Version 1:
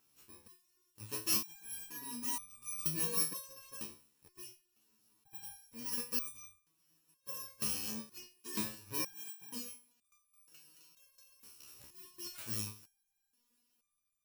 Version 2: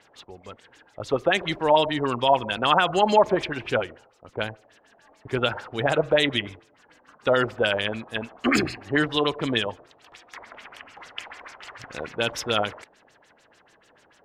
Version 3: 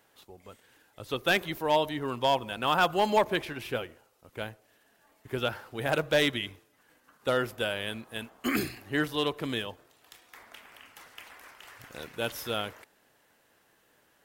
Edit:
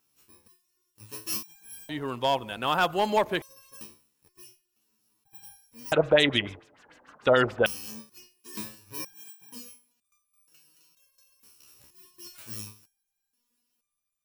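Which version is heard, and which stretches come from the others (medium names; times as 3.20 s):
1
1.89–3.42 s: from 3
5.92–7.66 s: from 2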